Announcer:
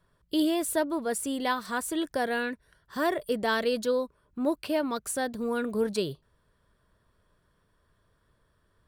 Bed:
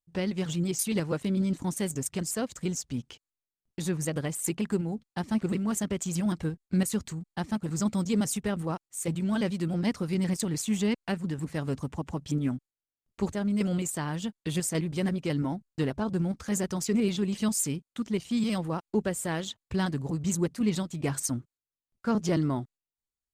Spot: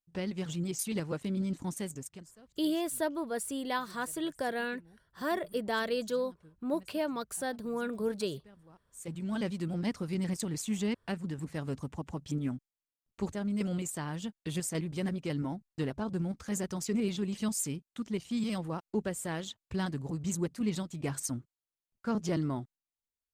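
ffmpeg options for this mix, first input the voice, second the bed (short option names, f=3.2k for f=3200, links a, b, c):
-filter_complex "[0:a]adelay=2250,volume=-5dB[a];[1:a]volume=16.5dB,afade=t=out:st=1.73:d=0.58:silence=0.0841395,afade=t=in:st=8.73:d=0.7:silence=0.0794328[b];[a][b]amix=inputs=2:normalize=0"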